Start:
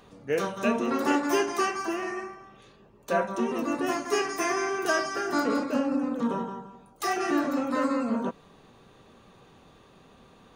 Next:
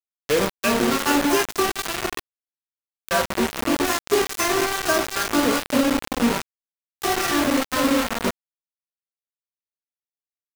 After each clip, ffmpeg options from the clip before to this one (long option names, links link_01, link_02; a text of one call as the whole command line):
ffmpeg -i in.wav -filter_complex "[0:a]acrossover=split=840[link_01][link_02];[link_01]aeval=exprs='val(0)*(1-0.7/2+0.7/2*cos(2*PI*2.4*n/s))':channel_layout=same[link_03];[link_02]aeval=exprs='val(0)*(1-0.7/2-0.7/2*cos(2*PI*2.4*n/s))':channel_layout=same[link_04];[link_03][link_04]amix=inputs=2:normalize=0,acrusher=bits=4:mix=0:aa=0.000001,volume=8dB" out.wav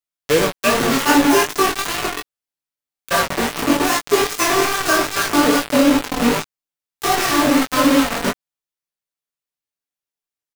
ffmpeg -i in.wav -af "aecho=1:1:6.9:0.42,flanger=delay=18:depth=5.2:speed=2.5,volume=7dB" out.wav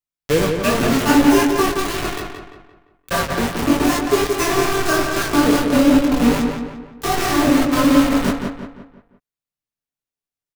ffmpeg -i in.wav -filter_complex "[0:a]lowshelf=frequency=240:gain=11.5,asplit=2[link_01][link_02];[link_02]adelay=173,lowpass=frequency=3300:poles=1,volume=-5dB,asplit=2[link_03][link_04];[link_04]adelay=173,lowpass=frequency=3300:poles=1,volume=0.44,asplit=2[link_05][link_06];[link_06]adelay=173,lowpass=frequency=3300:poles=1,volume=0.44,asplit=2[link_07][link_08];[link_08]adelay=173,lowpass=frequency=3300:poles=1,volume=0.44,asplit=2[link_09][link_10];[link_10]adelay=173,lowpass=frequency=3300:poles=1,volume=0.44[link_11];[link_03][link_05][link_07][link_09][link_11]amix=inputs=5:normalize=0[link_12];[link_01][link_12]amix=inputs=2:normalize=0,volume=-4dB" out.wav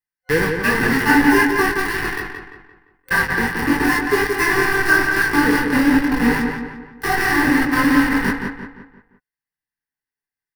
ffmpeg -i in.wav -af "superequalizer=8b=0.251:9b=1.58:11b=3.98:13b=0.562:15b=0.355,volume=-2dB" out.wav